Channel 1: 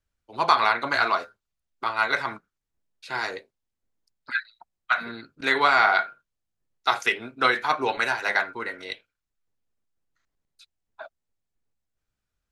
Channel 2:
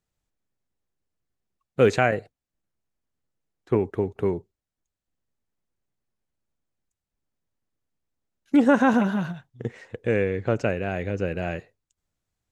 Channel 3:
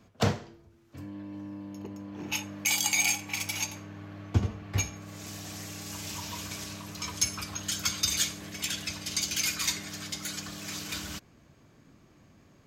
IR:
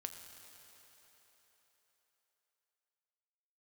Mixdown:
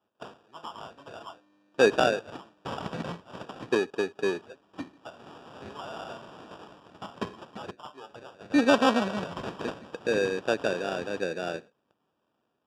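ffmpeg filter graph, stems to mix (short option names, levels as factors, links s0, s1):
-filter_complex "[0:a]asoftclip=type=tanh:threshold=0.335,adelay=150,volume=0.1[s0];[1:a]highpass=300,volume=0.891[s1];[2:a]highpass=440,aemphasis=mode=production:type=75kf,dynaudnorm=f=670:g=5:m=2,volume=0.168,asplit=3[s2][s3][s4];[s2]atrim=end=7.71,asetpts=PTS-STARTPTS,afade=t=out:st=7.706:d=0.004:c=hsin[s5];[s3]atrim=start=7.71:end=8.9,asetpts=PTS-STARTPTS,volume=0[s6];[s4]atrim=start=8.9,asetpts=PTS-STARTPTS,afade=t=in:d=0.004:c=hsin[s7];[s5][s6][s7]concat=n=3:v=0:a=1[s8];[s0][s1][s8]amix=inputs=3:normalize=0,acrusher=samples=21:mix=1:aa=0.000001,highpass=120,lowpass=4400"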